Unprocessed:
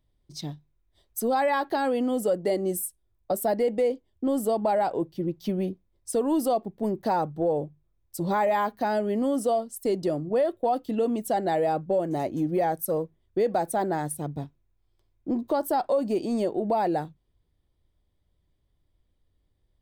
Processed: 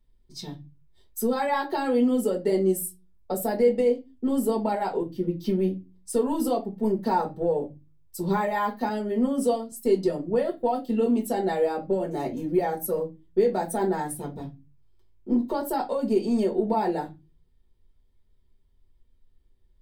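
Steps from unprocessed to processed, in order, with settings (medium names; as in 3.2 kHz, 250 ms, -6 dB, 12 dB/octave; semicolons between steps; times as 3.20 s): reverberation RT60 0.25 s, pre-delay 4 ms, DRR -1.5 dB; 8.89–9.72 s: three bands expanded up and down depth 40%; trim -4.5 dB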